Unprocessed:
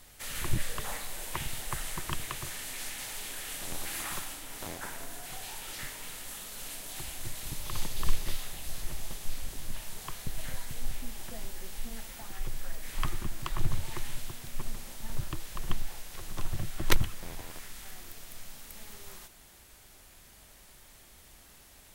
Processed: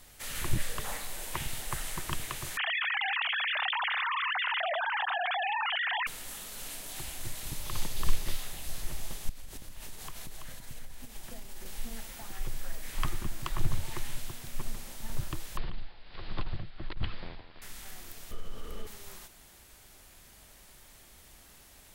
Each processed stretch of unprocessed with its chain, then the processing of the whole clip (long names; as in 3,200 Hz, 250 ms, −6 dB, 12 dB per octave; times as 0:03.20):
0:02.57–0:06.07: three sine waves on the formant tracks + high-pass filter 510 Hz + envelope flattener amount 100%
0:09.29–0:11.66: downward compressor 12 to 1, threshold −37 dBFS + single-tap delay 332 ms −5.5 dB
0:15.57–0:17.62: Butterworth low-pass 4,800 Hz 96 dB per octave + compressor whose output falls as the input rises −25 dBFS + amplitude tremolo 1.3 Hz, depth 74%
0:18.31–0:18.87: spectral tilt −2.5 dB per octave + downward compressor 2 to 1, threshold −30 dBFS + hollow resonant body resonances 440/1,200/3,000 Hz, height 15 dB, ringing for 25 ms
whole clip: no processing